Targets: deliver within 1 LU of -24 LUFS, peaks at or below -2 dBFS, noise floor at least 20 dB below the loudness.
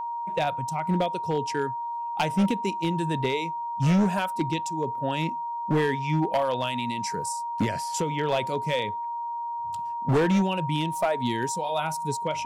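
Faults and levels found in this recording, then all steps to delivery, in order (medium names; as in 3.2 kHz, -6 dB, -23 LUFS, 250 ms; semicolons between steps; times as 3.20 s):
clipped samples 1.4%; clipping level -17.5 dBFS; steady tone 940 Hz; tone level -29 dBFS; loudness -27.0 LUFS; peak level -17.5 dBFS; loudness target -24.0 LUFS
-> clip repair -17.5 dBFS; band-stop 940 Hz, Q 30; trim +3 dB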